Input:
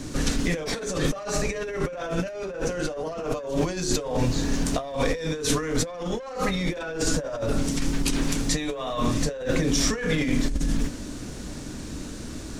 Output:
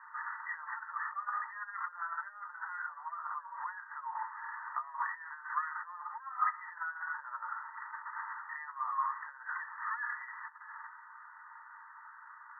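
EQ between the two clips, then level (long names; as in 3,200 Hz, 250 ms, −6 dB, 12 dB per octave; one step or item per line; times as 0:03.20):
Chebyshev high-pass with heavy ripple 880 Hz, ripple 6 dB
linear-phase brick-wall low-pass 2,000 Hz
high-frequency loss of the air 460 metres
+6.0 dB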